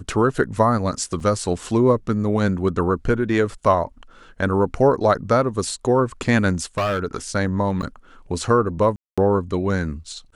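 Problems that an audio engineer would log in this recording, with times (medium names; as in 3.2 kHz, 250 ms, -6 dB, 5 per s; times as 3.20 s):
1.20 s: dropout 3.8 ms
6.53–6.99 s: clipped -18 dBFS
7.82–7.83 s: dropout 8.6 ms
8.96–9.18 s: dropout 216 ms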